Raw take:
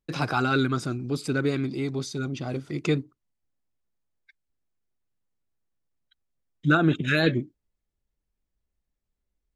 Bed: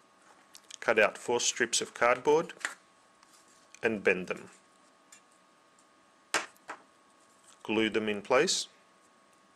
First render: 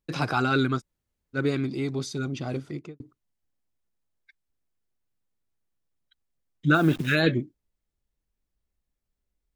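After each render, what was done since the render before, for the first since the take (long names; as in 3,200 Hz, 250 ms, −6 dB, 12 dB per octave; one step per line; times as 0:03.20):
0:00.79–0:01.36: fill with room tone, crossfade 0.06 s
0:02.59–0:03.00: fade out and dull
0:06.74–0:07.15: hold until the input has moved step −39.5 dBFS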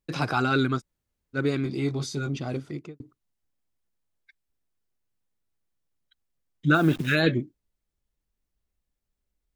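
0:01.63–0:02.37: double-tracking delay 21 ms −5 dB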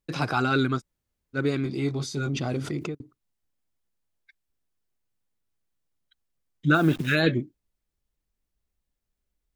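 0:02.17–0:02.95: envelope flattener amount 70%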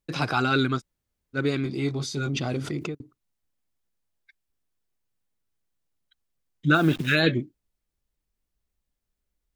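dynamic equaliser 3,300 Hz, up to +4 dB, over −42 dBFS, Q 0.86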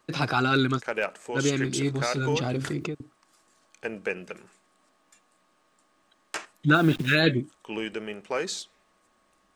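mix in bed −4 dB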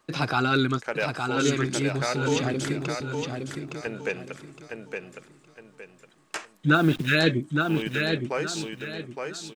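repeating echo 864 ms, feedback 31%, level −5 dB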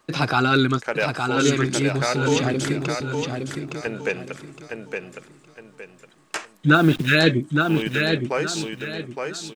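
level +4.5 dB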